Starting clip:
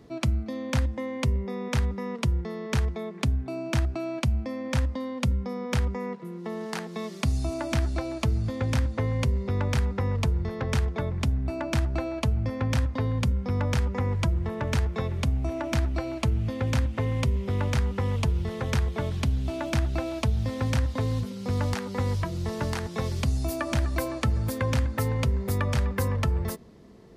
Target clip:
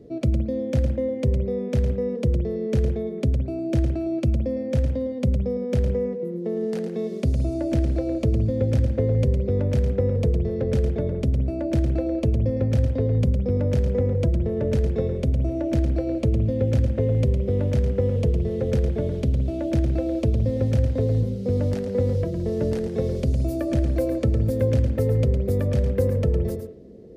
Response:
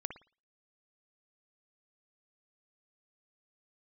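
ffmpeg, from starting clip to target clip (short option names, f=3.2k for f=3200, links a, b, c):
-filter_complex "[0:a]lowshelf=f=710:t=q:w=3:g=11,asplit=2[a][b];[1:a]atrim=start_sample=2205,adelay=109[c];[b][c]afir=irnorm=-1:irlink=0,volume=-6.5dB[d];[a][d]amix=inputs=2:normalize=0,volume=-8dB"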